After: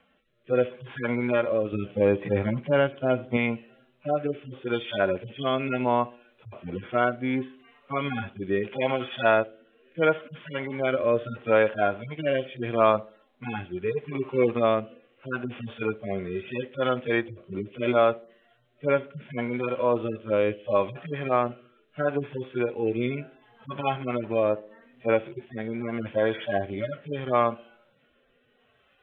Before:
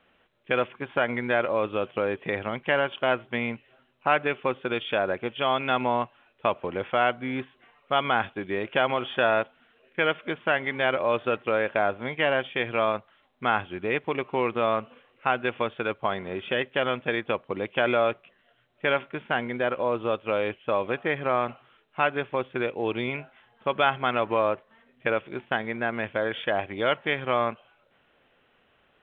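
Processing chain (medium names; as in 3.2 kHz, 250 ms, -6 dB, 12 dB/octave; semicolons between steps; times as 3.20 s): harmonic-percussive separation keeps harmonic; 1.72–3.37 s: bass shelf 270 Hz +7.5 dB; band-passed feedback delay 66 ms, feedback 52%, band-pass 340 Hz, level -18 dB; rotary cabinet horn 0.75 Hz; trim +6 dB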